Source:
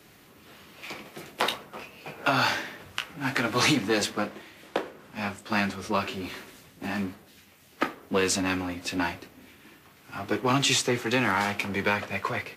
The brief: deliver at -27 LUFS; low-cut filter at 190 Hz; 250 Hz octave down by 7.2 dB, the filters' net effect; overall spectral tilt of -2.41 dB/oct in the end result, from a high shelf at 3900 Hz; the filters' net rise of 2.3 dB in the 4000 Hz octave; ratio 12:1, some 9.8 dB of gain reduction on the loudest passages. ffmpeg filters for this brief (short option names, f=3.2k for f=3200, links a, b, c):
-af "highpass=190,equalizer=f=250:t=o:g=-7.5,highshelf=f=3.9k:g=-5.5,equalizer=f=4k:t=o:g=6,acompressor=threshold=-29dB:ratio=12,volume=8dB"